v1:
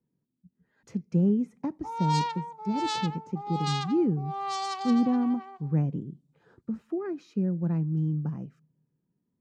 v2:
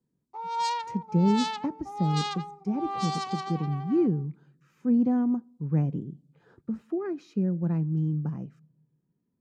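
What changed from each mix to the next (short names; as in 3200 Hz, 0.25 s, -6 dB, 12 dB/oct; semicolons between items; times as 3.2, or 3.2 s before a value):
speech: send +7.0 dB; background: entry -1.50 s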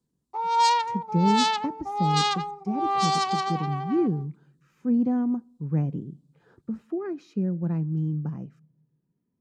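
background +8.0 dB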